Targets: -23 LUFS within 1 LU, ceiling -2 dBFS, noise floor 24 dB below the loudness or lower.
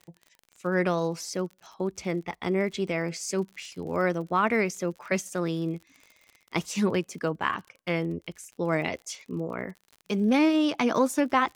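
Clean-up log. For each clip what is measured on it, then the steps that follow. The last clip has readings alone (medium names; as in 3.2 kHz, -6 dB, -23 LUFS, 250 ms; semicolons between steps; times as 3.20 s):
tick rate 50 per s; loudness -28.5 LUFS; peak level -8.0 dBFS; loudness target -23.0 LUFS
-> de-click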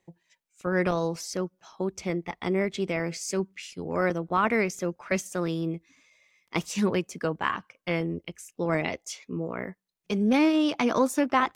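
tick rate 0.69 per s; loudness -28.5 LUFS; peak level -8.0 dBFS; loudness target -23.0 LUFS
-> trim +5.5 dB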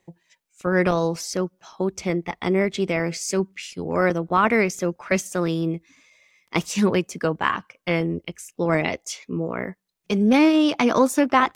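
loudness -23.0 LUFS; peak level -2.5 dBFS; noise floor -73 dBFS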